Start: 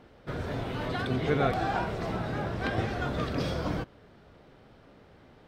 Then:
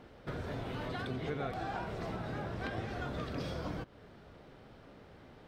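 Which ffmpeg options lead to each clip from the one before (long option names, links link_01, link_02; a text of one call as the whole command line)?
ffmpeg -i in.wav -af "acompressor=threshold=-38dB:ratio=3" out.wav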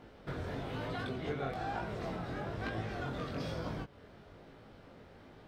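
ffmpeg -i in.wav -af "flanger=delay=18:depth=5.1:speed=1.1,volume=3dB" out.wav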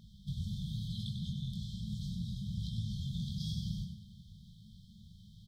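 ffmpeg -i in.wav -filter_complex "[0:a]asplit=6[link_01][link_02][link_03][link_04][link_05][link_06];[link_02]adelay=97,afreqshift=31,volume=-7dB[link_07];[link_03]adelay=194,afreqshift=62,volume=-14.3dB[link_08];[link_04]adelay=291,afreqshift=93,volume=-21.7dB[link_09];[link_05]adelay=388,afreqshift=124,volume=-29dB[link_10];[link_06]adelay=485,afreqshift=155,volume=-36.3dB[link_11];[link_01][link_07][link_08][link_09][link_10][link_11]amix=inputs=6:normalize=0,afftfilt=real='re*(1-between(b*sr/4096,220,3100))':imag='im*(1-between(b*sr/4096,220,3100))':win_size=4096:overlap=0.75,volume=4dB" out.wav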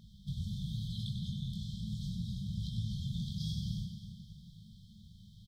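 ffmpeg -i in.wav -af "aecho=1:1:267|534|801|1068|1335:0.251|0.116|0.0532|0.0244|0.0112" out.wav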